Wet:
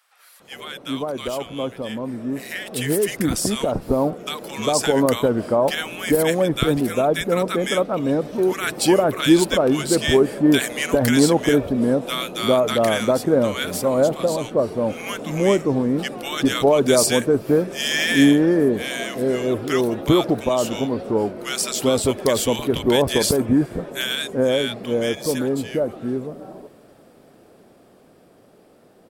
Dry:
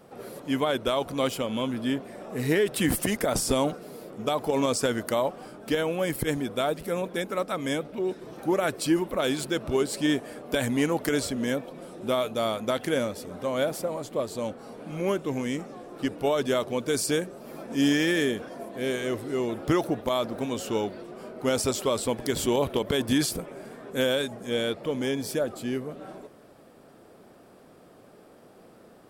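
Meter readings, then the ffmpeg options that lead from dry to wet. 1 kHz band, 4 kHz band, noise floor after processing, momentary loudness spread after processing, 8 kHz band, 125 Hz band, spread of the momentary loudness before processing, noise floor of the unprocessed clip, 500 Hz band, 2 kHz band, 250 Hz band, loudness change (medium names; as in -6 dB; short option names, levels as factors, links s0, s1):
+6.0 dB, +8.0 dB, -52 dBFS, 11 LU, +7.5 dB, +8.0 dB, 10 LU, -53 dBFS, +8.0 dB, +7.0 dB, +8.5 dB, +7.5 dB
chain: -filter_complex "[0:a]acrossover=split=1200[s0][s1];[s0]adelay=400[s2];[s2][s1]amix=inputs=2:normalize=0,dynaudnorm=f=710:g=11:m=3.76"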